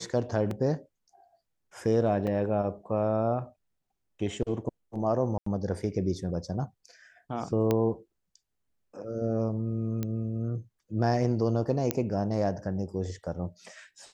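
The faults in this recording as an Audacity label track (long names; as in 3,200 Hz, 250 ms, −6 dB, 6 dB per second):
0.510000	0.510000	drop-out 2.4 ms
2.270000	2.270000	drop-out 4.3 ms
5.380000	5.460000	drop-out 84 ms
7.710000	7.710000	click −13 dBFS
10.030000	10.030000	click −18 dBFS
11.910000	11.910000	click −10 dBFS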